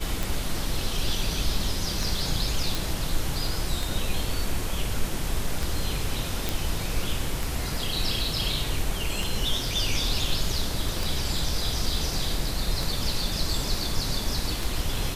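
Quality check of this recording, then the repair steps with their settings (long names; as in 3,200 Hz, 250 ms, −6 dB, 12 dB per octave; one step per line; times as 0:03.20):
scratch tick 33 1/3 rpm
0:02.75: click
0:06.49: click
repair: click removal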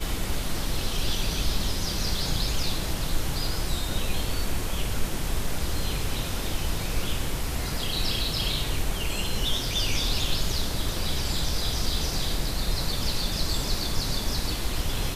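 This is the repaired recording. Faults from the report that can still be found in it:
none of them is left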